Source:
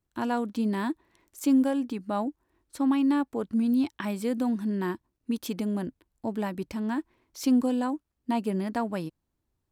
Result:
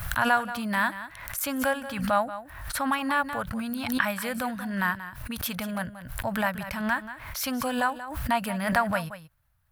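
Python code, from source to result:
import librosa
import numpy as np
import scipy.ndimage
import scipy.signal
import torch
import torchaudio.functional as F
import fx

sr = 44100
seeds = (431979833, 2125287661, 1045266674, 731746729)

y = fx.curve_eq(x, sr, hz=(130.0, 370.0, 580.0, 950.0, 1500.0, 2200.0, 3900.0, 7400.0, 11000.0), db=(0, -29, -3, -3, 7, 1, -3, -7, 4))
y = y + 10.0 ** (-13.0 / 20.0) * np.pad(y, (int(182 * sr / 1000.0), 0))[:len(y)]
y = fx.pre_swell(y, sr, db_per_s=61.0)
y = F.gain(torch.from_numpy(y), 8.5).numpy()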